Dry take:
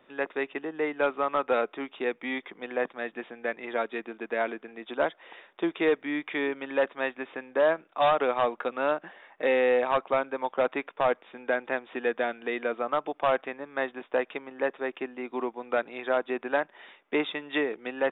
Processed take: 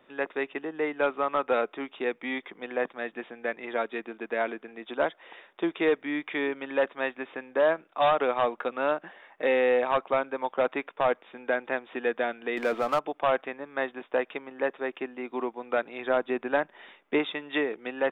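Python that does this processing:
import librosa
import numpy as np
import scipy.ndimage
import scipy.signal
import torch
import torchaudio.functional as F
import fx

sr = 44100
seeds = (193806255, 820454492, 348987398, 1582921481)

y = fx.power_curve(x, sr, exponent=0.7, at=(12.57, 12.99))
y = fx.low_shelf(y, sr, hz=210.0, db=7.5, at=(16.0, 17.19))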